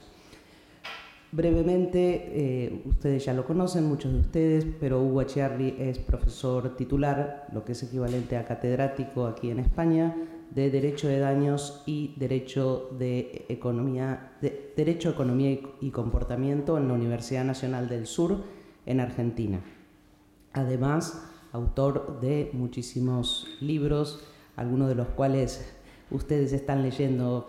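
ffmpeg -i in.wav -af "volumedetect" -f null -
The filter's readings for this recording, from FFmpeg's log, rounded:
mean_volume: -27.8 dB
max_volume: -15.0 dB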